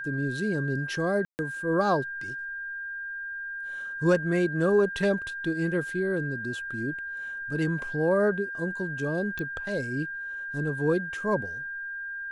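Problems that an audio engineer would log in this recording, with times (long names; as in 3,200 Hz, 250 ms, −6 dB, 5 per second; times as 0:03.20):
whistle 1,600 Hz −33 dBFS
0:01.25–0:01.39: drop-out 139 ms
0:09.39: click −21 dBFS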